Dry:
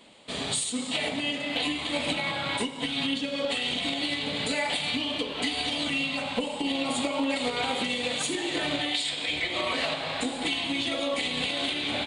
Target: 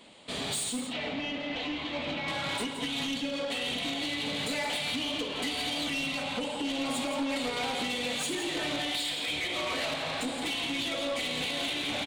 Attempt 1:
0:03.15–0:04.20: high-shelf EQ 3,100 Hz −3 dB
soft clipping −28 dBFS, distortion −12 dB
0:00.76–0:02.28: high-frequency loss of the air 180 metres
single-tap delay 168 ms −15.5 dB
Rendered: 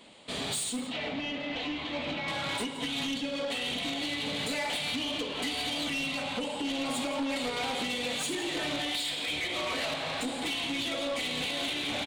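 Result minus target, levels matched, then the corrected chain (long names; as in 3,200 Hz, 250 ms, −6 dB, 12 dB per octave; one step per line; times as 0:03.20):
echo-to-direct −6 dB
0:03.15–0:04.20: high-shelf EQ 3,100 Hz −3 dB
soft clipping −28 dBFS, distortion −12 dB
0:00.76–0:02.28: high-frequency loss of the air 180 metres
single-tap delay 168 ms −9.5 dB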